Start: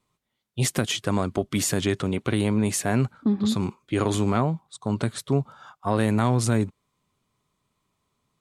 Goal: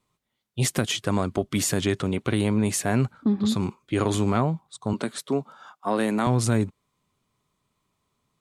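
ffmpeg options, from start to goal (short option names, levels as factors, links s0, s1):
-filter_complex "[0:a]asettb=1/sr,asplit=3[s0][s1][s2];[s0]atrim=end=4.934[s3];[s1]atrim=start=4.93:end=6.27,asetpts=PTS-STARTPTS,afade=t=in:d=0.004:c=qsin,afade=t=out:st=1.336:d=0.004:c=qsin,highpass=f=190:w=0.5412,highpass=f=190:w=1.3066[s4];[s2]atrim=start=6.266[s5];[s3][s4]acrossfade=d=0.004:c1=hsin:c2=qsin[s6];[s6][s5]acrossfade=d=0.004:c1=qsin:c2=hsin"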